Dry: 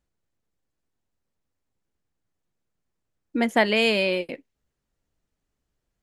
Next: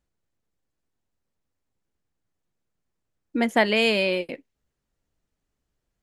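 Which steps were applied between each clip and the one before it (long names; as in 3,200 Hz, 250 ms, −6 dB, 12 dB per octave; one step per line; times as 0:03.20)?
no processing that can be heard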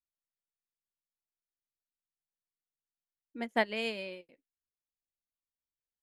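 expander for the loud parts 2.5 to 1, over −30 dBFS
level −7.5 dB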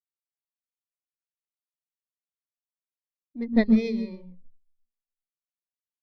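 lower of the sound and its delayed copy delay 0.52 ms
convolution reverb RT60 0.30 s, pre-delay 120 ms, DRR 9 dB
every bin expanded away from the loudest bin 1.5 to 1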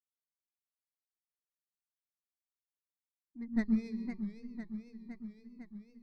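stylus tracing distortion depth 0.028 ms
phaser with its sweep stopped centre 1,300 Hz, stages 4
feedback echo with a swinging delay time 507 ms, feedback 68%, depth 141 cents, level −9 dB
level −8.5 dB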